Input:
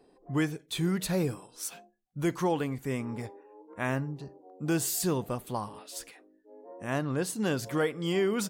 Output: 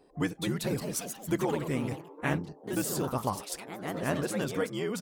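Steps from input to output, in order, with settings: gain riding within 5 dB 0.5 s; granular stretch 0.59×, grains 25 ms; ever faster or slower copies 240 ms, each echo +2 st, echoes 3, each echo -6 dB

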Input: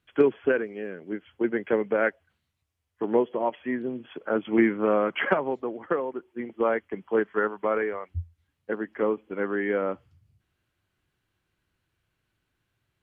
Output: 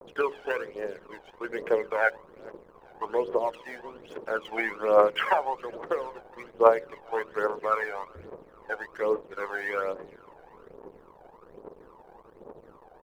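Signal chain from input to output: tilt EQ +3 dB/octave; band noise 120–460 Hz -43 dBFS; de-hum 46.9 Hz, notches 12; on a send: feedback delay 416 ms, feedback 46%, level -24 dB; on the sum: crossover distortion -46.5 dBFS; graphic EQ 125/250/500/1000 Hz -11/-7/+10/+7 dB; phaser 1.2 Hz, delay 1.4 ms, feedback 68%; trim -6 dB

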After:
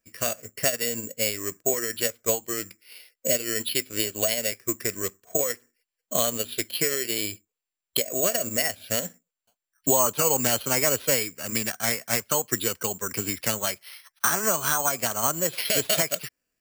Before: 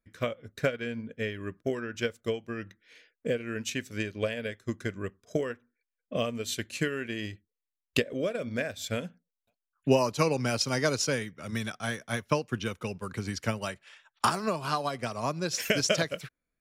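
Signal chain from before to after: formant shift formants +3 st; tilt EQ +2 dB/octave; careless resampling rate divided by 6×, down filtered, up zero stuff; peak limiter -5 dBFS, peak gain reduction 9 dB; treble shelf 4.7 kHz -8 dB; trim +5.5 dB

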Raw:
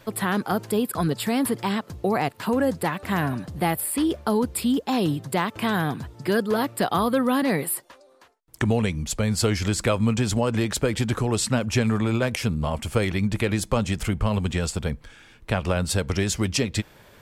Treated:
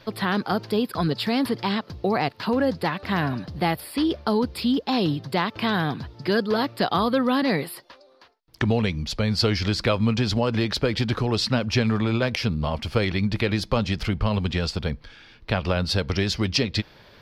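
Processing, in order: resonant high shelf 6.1 kHz -9.5 dB, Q 3

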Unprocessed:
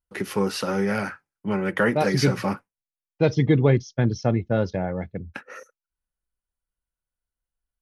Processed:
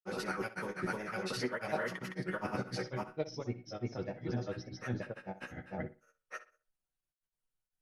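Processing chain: wow and flutter 89 cents; reverse; compression 6:1, threshold -30 dBFS, peak gain reduction 15.5 dB; reverse; chord resonator B2 major, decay 0.33 s; harmonic-percussive split percussive +8 dB; granulator, spray 930 ms, pitch spread up and down by 0 st; on a send: tape echo 62 ms, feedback 27%, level -13.5 dB, low-pass 5.2 kHz; on the sum: trim +9 dB

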